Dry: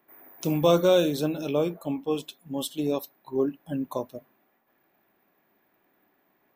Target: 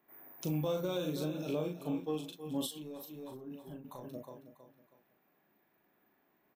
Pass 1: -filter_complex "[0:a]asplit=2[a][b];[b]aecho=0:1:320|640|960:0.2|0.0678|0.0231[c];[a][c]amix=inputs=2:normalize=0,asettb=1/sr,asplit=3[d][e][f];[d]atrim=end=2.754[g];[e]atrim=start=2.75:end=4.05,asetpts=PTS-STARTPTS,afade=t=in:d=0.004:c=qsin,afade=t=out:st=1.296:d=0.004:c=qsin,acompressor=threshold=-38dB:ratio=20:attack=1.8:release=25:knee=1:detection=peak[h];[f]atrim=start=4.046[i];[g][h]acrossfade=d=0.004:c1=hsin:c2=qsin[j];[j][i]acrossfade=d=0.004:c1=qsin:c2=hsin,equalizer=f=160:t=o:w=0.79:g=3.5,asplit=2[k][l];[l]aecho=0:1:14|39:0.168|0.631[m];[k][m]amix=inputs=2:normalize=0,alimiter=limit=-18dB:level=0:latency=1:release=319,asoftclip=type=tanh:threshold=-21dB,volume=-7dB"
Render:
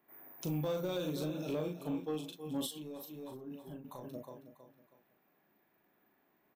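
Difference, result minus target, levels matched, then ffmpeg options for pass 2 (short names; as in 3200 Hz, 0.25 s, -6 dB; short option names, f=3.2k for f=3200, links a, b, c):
soft clip: distortion +13 dB
-filter_complex "[0:a]asplit=2[a][b];[b]aecho=0:1:320|640|960:0.2|0.0678|0.0231[c];[a][c]amix=inputs=2:normalize=0,asettb=1/sr,asplit=3[d][e][f];[d]atrim=end=2.754[g];[e]atrim=start=2.75:end=4.05,asetpts=PTS-STARTPTS,afade=t=in:d=0.004:c=qsin,afade=t=out:st=1.296:d=0.004:c=qsin,acompressor=threshold=-38dB:ratio=20:attack=1.8:release=25:knee=1:detection=peak[h];[f]atrim=start=4.046[i];[g][h]acrossfade=d=0.004:c1=hsin:c2=qsin[j];[j][i]acrossfade=d=0.004:c1=qsin:c2=hsin,equalizer=f=160:t=o:w=0.79:g=3.5,asplit=2[k][l];[l]aecho=0:1:14|39:0.168|0.631[m];[k][m]amix=inputs=2:normalize=0,alimiter=limit=-18dB:level=0:latency=1:release=319,asoftclip=type=tanh:threshold=-13.5dB,volume=-7dB"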